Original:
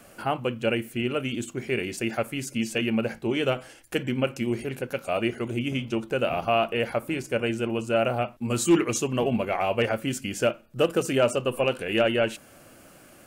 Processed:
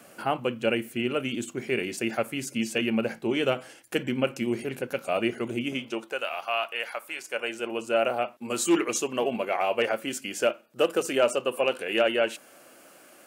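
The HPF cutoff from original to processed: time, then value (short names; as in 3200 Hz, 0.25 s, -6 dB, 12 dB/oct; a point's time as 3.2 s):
5.51 s 160 Hz
6.06 s 490 Hz
6.27 s 1000 Hz
7.14 s 1000 Hz
7.83 s 330 Hz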